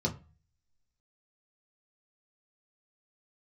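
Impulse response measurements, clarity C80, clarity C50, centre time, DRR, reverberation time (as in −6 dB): 21.0 dB, 15.5 dB, 11 ms, −1.5 dB, 0.35 s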